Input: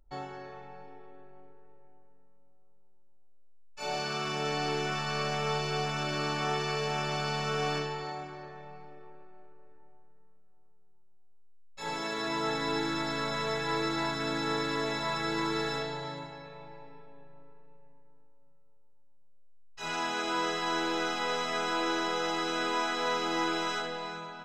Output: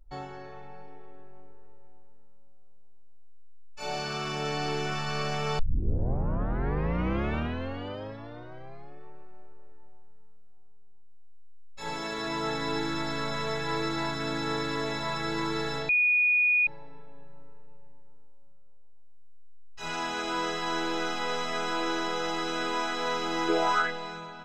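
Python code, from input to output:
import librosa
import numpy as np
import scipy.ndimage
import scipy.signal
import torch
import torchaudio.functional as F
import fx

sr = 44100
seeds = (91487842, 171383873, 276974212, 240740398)

y = fx.peak_eq(x, sr, hz=fx.line((23.48, 380.0), (23.9, 1900.0)), db=14.5, octaves=0.77, at=(23.48, 23.9), fade=0.02)
y = fx.edit(y, sr, fx.tape_start(start_s=5.59, length_s=3.44),
    fx.bleep(start_s=15.89, length_s=0.78, hz=2460.0, db=-20.0), tone=tone)
y = fx.low_shelf(y, sr, hz=88.0, db=10.5)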